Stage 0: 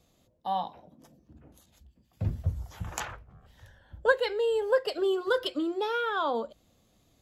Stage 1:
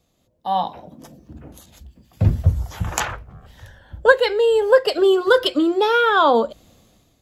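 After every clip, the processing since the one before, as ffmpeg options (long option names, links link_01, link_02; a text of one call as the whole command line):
ffmpeg -i in.wav -af "dynaudnorm=framelen=160:gausssize=7:maxgain=14.5dB" out.wav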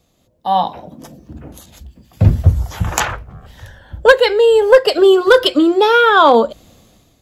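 ffmpeg -i in.wav -af "asoftclip=type=hard:threshold=-7dB,volume=6dB" out.wav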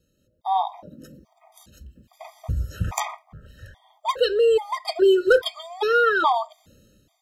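ffmpeg -i in.wav -af "afftfilt=real='re*gt(sin(2*PI*1.2*pts/sr)*(1-2*mod(floor(b*sr/1024/630),2)),0)':imag='im*gt(sin(2*PI*1.2*pts/sr)*(1-2*mod(floor(b*sr/1024/630),2)),0)':win_size=1024:overlap=0.75,volume=-7dB" out.wav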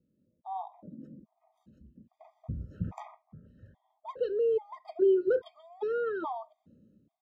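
ffmpeg -i in.wav -af "bandpass=frequency=220:width_type=q:width=1.7:csg=0" out.wav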